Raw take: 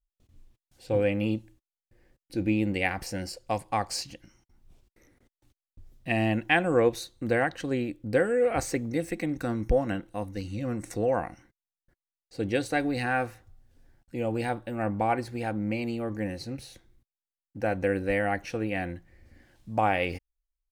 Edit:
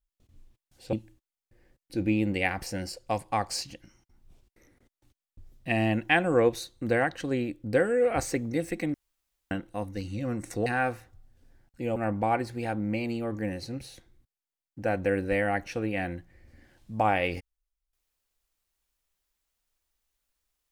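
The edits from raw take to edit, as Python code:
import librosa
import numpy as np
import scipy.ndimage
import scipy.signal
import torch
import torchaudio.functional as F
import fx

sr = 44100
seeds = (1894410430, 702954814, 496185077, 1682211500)

y = fx.edit(x, sr, fx.cut(start_s=0.93, length_s=0.4),
    fx.room_tone_fill(start_s=9.34, length_s=0.57),
    fx.cut(start_s=11.06, length_s=1.94),
    fx.cut(start_s=14.3, length_s=0.44), tone=tone)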